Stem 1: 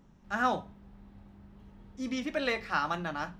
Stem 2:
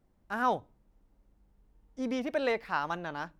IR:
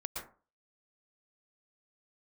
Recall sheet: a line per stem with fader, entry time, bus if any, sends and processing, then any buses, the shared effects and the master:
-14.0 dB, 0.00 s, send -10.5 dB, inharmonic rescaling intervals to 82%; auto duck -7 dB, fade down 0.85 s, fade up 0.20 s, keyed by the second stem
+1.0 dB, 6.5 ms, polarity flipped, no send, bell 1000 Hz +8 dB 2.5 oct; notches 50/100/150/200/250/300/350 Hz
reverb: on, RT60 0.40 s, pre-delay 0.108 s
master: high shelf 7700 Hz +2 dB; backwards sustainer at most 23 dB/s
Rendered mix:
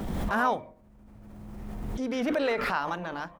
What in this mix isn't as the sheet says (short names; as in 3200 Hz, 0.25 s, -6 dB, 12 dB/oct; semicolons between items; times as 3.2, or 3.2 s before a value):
stem 1 -14.0 dB -> -6.5 dB; stem 2: missing bell 1000 Hz +8 dB 2.5 oct